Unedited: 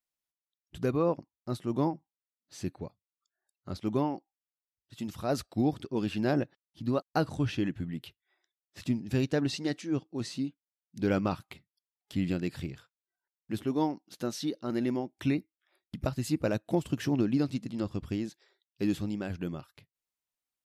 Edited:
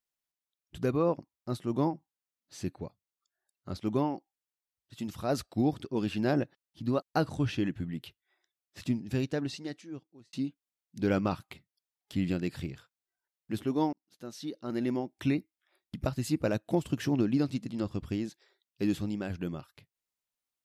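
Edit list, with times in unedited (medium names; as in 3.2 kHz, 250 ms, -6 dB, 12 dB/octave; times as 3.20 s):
8.84–10.33 s: fade out
13.93–14.95 s: fade in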